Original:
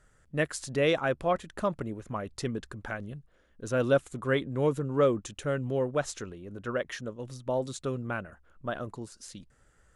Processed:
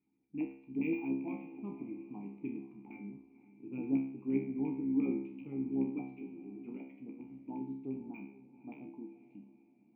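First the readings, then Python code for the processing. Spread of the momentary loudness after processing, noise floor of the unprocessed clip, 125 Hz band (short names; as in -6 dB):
16 LU, -64 dBFS, -14.5 dB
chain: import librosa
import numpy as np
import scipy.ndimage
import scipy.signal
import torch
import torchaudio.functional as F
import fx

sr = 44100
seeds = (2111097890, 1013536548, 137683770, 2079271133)

p1 = fx.octave_divider(x, sr, octaves=1, level_db=-4.0)
p2 = fx.graphic_eq_15(p1, sr, hz=(160, 400, 1600), db=(8, 5, -8))
p3 = fx.filter_lfo_lowpass(p2, sr, shape='square', hz=8.6, low_hz=720.0, high_hz=2500.0, q=4.3)
p4 = fx.vowel_filter(p3, sr, vowel='u')
p5 = fx.air_absorb(p4, sr, metres=250.0)
p6 = fx.comb_fb(p5, sr, f0_hz=67.0, decay_s=0.6, harmonics='all', damping=0.0, mix_pct=90)
p7 = fx.small_body(p6, sr, hz=(230.0, 2400.0), ring_ms=25, db=15)
p8 = p7 + fx.echo_diffused(p7, sr, ms=513, feedback_pct=45, wet_db=-16.0, dry=0)
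y = np.interp(np.arange(len(p8)), np.arange(len(p8))[::2], p8[::2])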